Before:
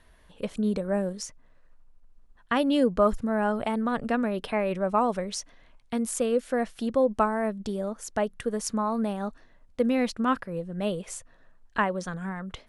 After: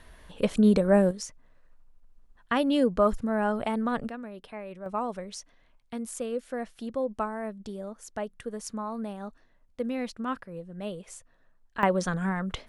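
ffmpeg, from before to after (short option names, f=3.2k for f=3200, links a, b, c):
-af "asetnsamples=n=441:p=0,asendcmd='1.11 volume volume -1dB;4.09 volume volume -13dB;4.86 volume volume -7dB;11.83 volume volume 5dB',volume=6.5dB"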